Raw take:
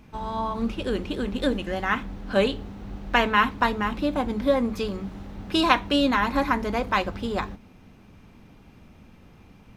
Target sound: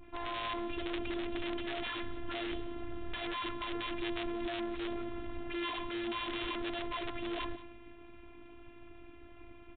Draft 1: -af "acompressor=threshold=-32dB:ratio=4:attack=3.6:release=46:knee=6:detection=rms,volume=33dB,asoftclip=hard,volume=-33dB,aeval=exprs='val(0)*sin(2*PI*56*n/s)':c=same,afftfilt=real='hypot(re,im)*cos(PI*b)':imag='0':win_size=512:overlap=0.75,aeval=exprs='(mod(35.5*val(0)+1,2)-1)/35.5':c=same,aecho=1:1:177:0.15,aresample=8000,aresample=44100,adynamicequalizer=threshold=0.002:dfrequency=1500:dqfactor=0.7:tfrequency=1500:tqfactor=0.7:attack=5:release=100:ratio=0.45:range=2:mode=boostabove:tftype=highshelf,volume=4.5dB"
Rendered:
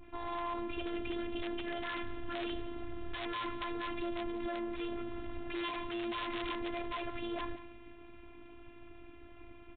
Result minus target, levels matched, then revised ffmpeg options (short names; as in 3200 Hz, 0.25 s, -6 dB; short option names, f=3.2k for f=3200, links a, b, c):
compressor: peak gain reduction +6 dB
-af "acompressor=threshold=-24dB:ratio=4:attack=3.6:release=46:knee=6:detection=rms,volume=33dB,asoftclip=hard,volume=-33dB,aeval=exprs='val(0)*sin(2*PI*56*n/s)':c=same,afftfilt=real='hypot(re,im)*cos(PI*b)':imag='0':win_size=512:overlap=0.75,aeval=exprs='(mod(35.5*val(0)+1,2)-1)/35.5':c=same,aecho=1:1:177:0.15,aresample=8000,aresample=44100,adynamicequalizer=threshold=0.002:dfrequency=1500:dqfactor=0.7:tfrequency=1500:tqfactor=0.7:attack=5:release=100:ratio=0.45:range=2:mode=boostabove:tftype=highshelf,volume=4.5dB"